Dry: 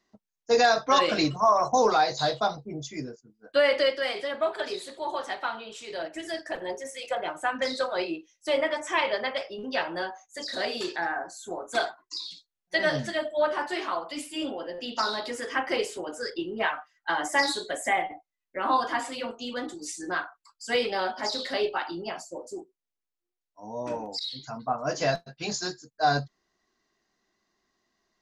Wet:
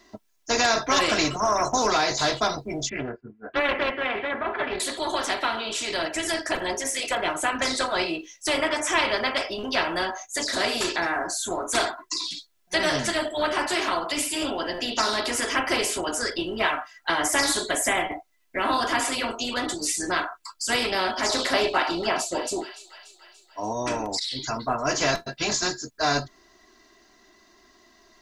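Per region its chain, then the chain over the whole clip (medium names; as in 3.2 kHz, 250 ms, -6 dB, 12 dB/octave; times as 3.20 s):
2.89–4.80 s: inverse Chebyshev low-pass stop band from 5.6 kHz, stop band 50 dB + comb of notches 320 Hz + loudspeaker Doppler distortion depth 0.36 ms
21.29–23.73 s: peaking EQ 660 Hz +8 dB 2.3 oct + feedback echo behind a high-pass 290 ms, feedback 58%, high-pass 2.4 kHz, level -18 dB
whole clip: comb 3 ms, depth 55%; dynamic bell 4.2 kHz, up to -7 dB, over -44 dBFS, Q 1.1; spectrum-flattening compressor 2:1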